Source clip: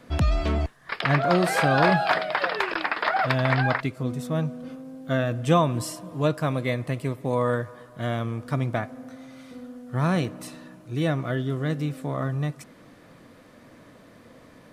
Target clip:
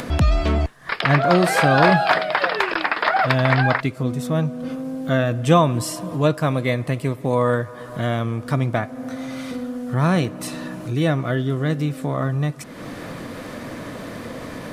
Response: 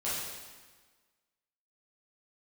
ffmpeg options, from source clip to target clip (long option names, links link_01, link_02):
-af "acompressor=mode=upward:threshold=-25dB:ratio=2.5,volume=5dB"